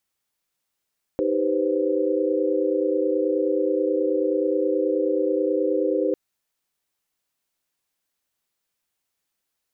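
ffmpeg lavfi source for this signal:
ffmpeg -f lavfi -i "aevalsrc='0.0562*(sin(2*PI*311.13*t)+sin(2*PI*392*t)+sin(2*PI*493.88*t)+sin(2*PI*523.25*t))':duration=4.95:sample_rate=44100" out.wav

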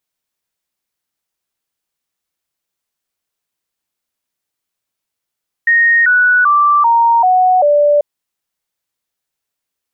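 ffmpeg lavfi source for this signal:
ffmpeg -f lavfi -i "aevalsrc='0.447*clip(min(mod(t,0.39),0.39-mod(t,0.39))/0.005,0,1)*sin(2*PI*1860*pow(2,-floor(t/0.39)/3)*mod(t,0.39))':duration=2.34:sample_rate=44100" out.wav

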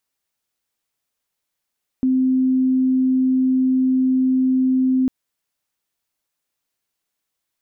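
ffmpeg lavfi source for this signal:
ffmpeg -f lavfi -i "sine=frequency=259:duration=3.05:sample_rate=44100,volume=4.06dB" out.wav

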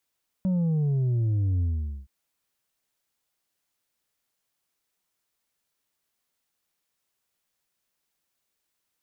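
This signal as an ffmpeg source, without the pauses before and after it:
ffmpeg -f lavfi -i "aevalsrc='0.0794*clip((1.62-t)/0.46,0,1)*tanh(1.58*sin(2*PI*190*1.62/log(65/190)*(exp(log(65/190)*t/1.62)-1)))/tanh(1.58)':duration=1.62:sample_rate=44100" out.wav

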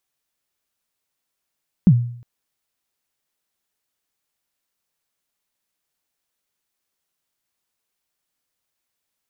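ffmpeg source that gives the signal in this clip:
ffmpeg -f lavfi -i "aevalsrc='0.562*pow(10,-3*t/0.59)*sin(2*PI*(210*0.059/log(120/210)*(exp(log(120/210)*min(t,0.059)/0.059)-1)+120*max(t-0.059,0)))':duration=0.36:sample_rate=44100" out.wav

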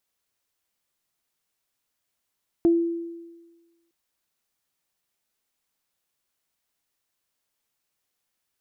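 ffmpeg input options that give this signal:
ffmpeg -f lavfi -i "aevalsrc='0.211*pow(10,-3*t/1.31)*sin(2*PI*337*t)+0.0266*pow(10,-3*t/0.2)*sin(2*PI*674*t)':duration=1.26:sample_rate=44100" out.wav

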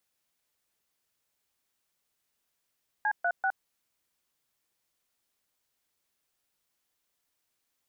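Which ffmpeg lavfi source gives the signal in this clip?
ffmpeg -f lavfi -i "aevalsrc='0.0447*clip(min(mod(t,0.194),0.065-mod(t,0.194))/0.002,0,1)*(eq(floor(t/0.194),0)*(sin(2*PI*852*mod(t,0.194))+sin(2*PI*1633*mod(t,0.194)))+eq(floor(t/0.194),1)*(sin(2*PI*697*mod(t,0.194))+sin(2*PI*1477*mod(t,0.194)))+eq(floor(t/0.194),2)*(sin(2*PI*770*mod(t,0.194))+sin(2*PI*1477*mod(t,0.194))))':duration=0.582:sample_rate=44100" out.wav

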